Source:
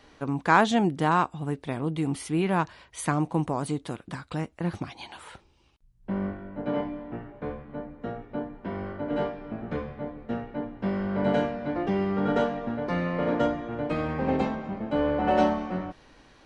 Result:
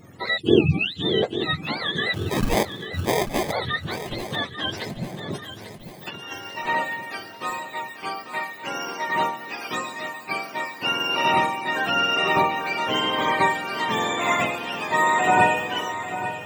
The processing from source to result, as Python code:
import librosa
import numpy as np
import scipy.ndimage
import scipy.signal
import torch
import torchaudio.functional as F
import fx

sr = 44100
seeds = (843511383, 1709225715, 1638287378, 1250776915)

p1 = fx.octave_mirror(x, sr, pivot_hz=740.0)
p2 = fx.spec_box(p1, sr, start_s=0.38, length_s=0.85, low_hz=490.0, high_hz=2500.0, gain_db=-20)
p3 = fx.sample_hold(p2, sr, seeds[0], rate_hz=1400.0, jitter_pct=0, at=(2.13, 3.51), fade=0.02)
p4 = fx.over_compress(p3, sr, threshold_db=-44.0, ratio=-1.0, at=(5.28, 6.31), fade=0.02)
p5 = p4 + fx.echo_feedback(p4, sr, ms=842, feedback_pct=55, wet_db=-11.5, dry=0)
y = p5 * 10.0 ** (7.0 / 20.0)